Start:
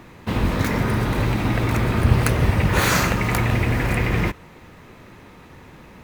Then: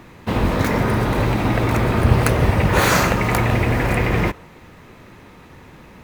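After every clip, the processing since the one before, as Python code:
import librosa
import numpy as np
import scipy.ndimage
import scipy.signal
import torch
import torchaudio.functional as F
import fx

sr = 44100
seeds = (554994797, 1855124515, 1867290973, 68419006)

y = fx.dynamic_eq(x, sr, hz=630.0, q=0.72, threshold_db=-37.0, ratio=4.0, max_db=5)
y = F.gain(torch.from_numpy(y), 1.0).numpy()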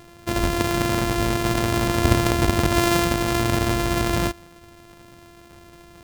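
y = np.r_[np.sort(x[:len(x) // 128 * 128].reshape(-1, 128), axis=1).ravel(), x[len(x) // 128 * 128:]]
y = F.gain(torch.from_numpy(y), -3.5).numpy()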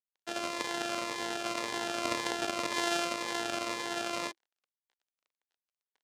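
y = np.sign(x) * np.maximum(np.abs(x) - 10.0 ** (-37.5 / 20.0), 0.0)
y = fx.bandpass_edges(y, sr, low_hz=530.0, high_hz=7300.0)
y = fx.notch_cascade(y, sr, direction='falling', hz=1.9)
y = F.gain(torch.from_numpy(y), -5.5).numpy()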